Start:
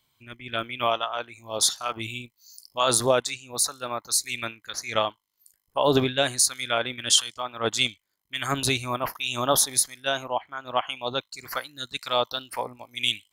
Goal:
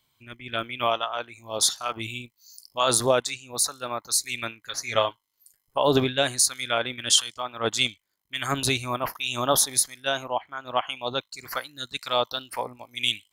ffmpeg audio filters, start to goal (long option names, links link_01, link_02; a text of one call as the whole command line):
ffmpeg -i in.wav -filter_complex "[0:a]asettb=1/sr,asplit=3[link_01][link_02][link_03];[link_01]atrim=end=4.624[link_04];[link_02]atrim=start=4.62:end=5.78,asetpts=PTS-STARTPTS,afade=type=in:duration=0.004:curve=qsin,afade=type=out:start_time=1.156:duration=0.004:curve=qsin,aecho=1:1:7.4:0.57,atrim=end_sample=51156[link_05];[link_03]atrim=start=5.776[link_06];[link_04][link_05]acrossfade=duration=0.004:curve1=hsin:curve2=qsin[link_07];[link_07][link_06]acrossfade=duration=0.004:curve1=qsin:curve2=hsin" out.wav